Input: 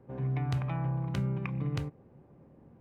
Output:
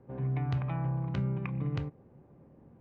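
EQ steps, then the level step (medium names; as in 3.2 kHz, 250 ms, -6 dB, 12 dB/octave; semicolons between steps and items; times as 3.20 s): distance through air 170 m; 0.0 dB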